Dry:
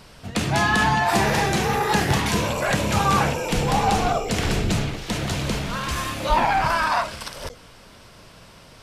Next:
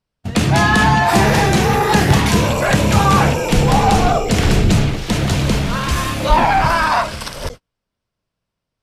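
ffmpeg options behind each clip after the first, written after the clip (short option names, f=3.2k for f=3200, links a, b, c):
-af "agate=range=-41dB:threshold=-37dB:ratio=16:detection=peak,acontrast=79,lowshelf=f=320:g=5,volume=-1dB"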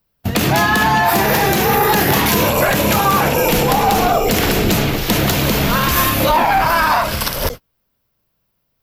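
-filter_complex "[0:a]acrossover=split=220[a][b];[a]acompressor=threshold=-24dB:ratio=6[c];[c][b]amix=inputs=2:normalize=0,alimiter=limit=-12dB:level=0:latency=1:release=133,aexciter=amount=7.3:drive=7.6:freq=12k,volume=6.5dB"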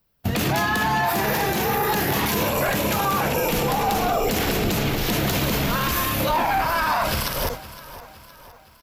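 -af "alimiter=limit=-13.5dB:level=0:latency=1:release=86,aecho=1:1:514|1028|1542|2056:0.15|0.0733|0.0359|0.0176"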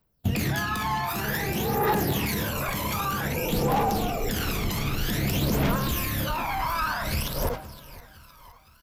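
-af "aphaser=in_gain=1:out_gain=1:delay=1:decay=0.61:speed=0.53:type=triangular,volume=-7.5dB"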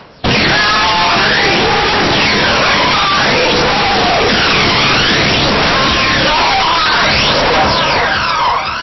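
-filter_complex "[0:a]asplit=2[a][b];[b]highpass=f=720:p=1,volume=34dB,asoftclip=type=tanh:threshold=-12.5dB[c];[a][c]amix=inputs=2:normalize=0,lowpass=f=3.1k:p=1,volume=-6dB,aeval=exprs='0.237*sin(PI/2*2.82*val(0)/0.237)':c=same,volume=5dB" -ar 16000 -c:a libmp3lame -b:a 24k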